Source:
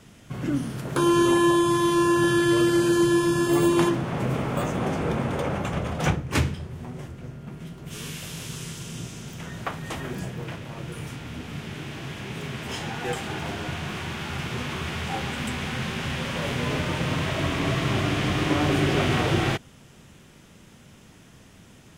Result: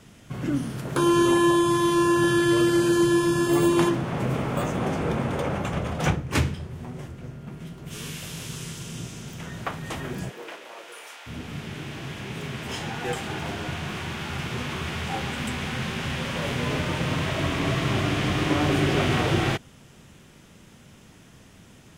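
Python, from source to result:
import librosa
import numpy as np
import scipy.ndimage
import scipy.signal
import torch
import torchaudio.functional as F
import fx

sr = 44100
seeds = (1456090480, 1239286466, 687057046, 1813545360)

y = fx.highpass(x, sr, hz=fx.line((10.29, 300.0), (11.26, 620.0)), slope=24, at=(10.29, 11.26), fade=0.02)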